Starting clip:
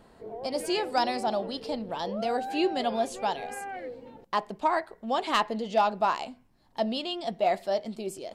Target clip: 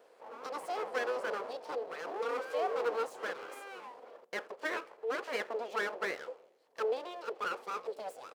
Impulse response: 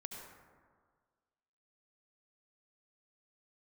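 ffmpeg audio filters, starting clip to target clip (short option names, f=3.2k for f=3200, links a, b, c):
-filter_complex "[0:a]asplit=6[a][b][c][d][e][f];[b]adelay=82,afreqshift=-140,volume=-24dB[g];[c]adelay=164,afreqshift=-280,volume=-27.7dB[h];[d]adelay=246,afreqshift=-420,volume=-31.5dB[i];[e]adelay=328,afreqshift=-560,volume=-35.2dB[j];[f]adelay=410,afreqshift=-700,volume=-39dB[k];[a][g][h][i][j][k]amix=inputs=6:normalize=0,acrossover=split=1700[l][m];[m]acompressor=threshold=-47dB:ratio=6[n];[l][n]amix=inputs=2:normalize=0,aeval=exprs='abs(val(0))':c=same,highpass=f=480:t=q:w=5.3,bandreject=f=3.7k:w=25,volume=-6dB"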